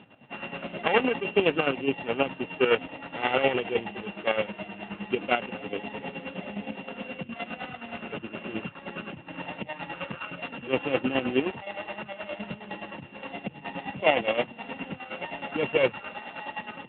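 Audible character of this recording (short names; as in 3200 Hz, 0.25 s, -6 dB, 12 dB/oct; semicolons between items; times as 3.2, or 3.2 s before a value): a buzz of ramps at a fixed pitch in blocks of 16 samples; chopped level 9.6 Hz, depth 65%, duty 40%; AMR-NB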